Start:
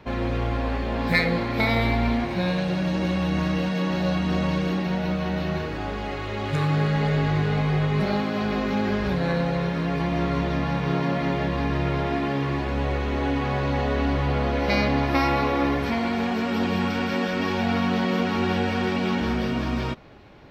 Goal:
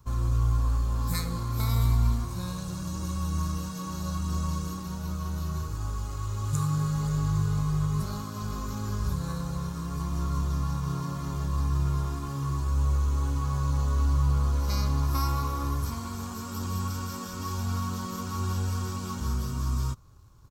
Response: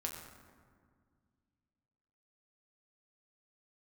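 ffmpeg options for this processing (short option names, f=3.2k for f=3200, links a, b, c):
-filter_complex "[0:a]firequalizer=gain_entry='entry(110,0);entry(190,-16);entry(720,-25);entry(1100,-6);entry(1900,-28);entry(7000,9)':delay=0.05:min_phase=1,asplit=2[a][b];[b]aeval=exprs='sgn(val(0))*max(abs(val(0))-0.00335,0)':c=same,volume=-4.5dB[c];[a][c]amix=inputs=2:normalize=0"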